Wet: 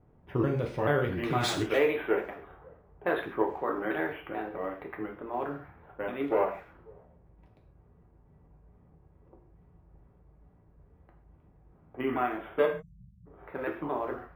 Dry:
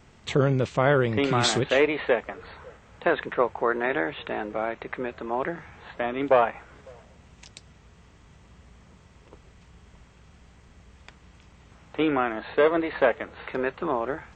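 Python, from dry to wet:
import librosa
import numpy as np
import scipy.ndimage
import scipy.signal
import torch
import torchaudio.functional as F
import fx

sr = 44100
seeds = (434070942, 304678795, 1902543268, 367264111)

y = fx.pitch_trill(x, sr, semitones=-3.0, every_ms=217)
y = fx.spec_erase(y, sr, start_s=12.66, length_s=0.61, low_hz=210.0, high_hz=5100.0)
y = fx.env_lowpass(y, sr, base_hz=680.0, full_db=-21.5)
y = fx.rev_gated(y, sr, seeds[0], gate_ms=170, shape='falling', drr_db=1.5)
y = np.interp(np.arange(len(y)), np.arange(len(y))[::3], y[::3])
y = y * 10.0 ** (-7.5 / 20.0)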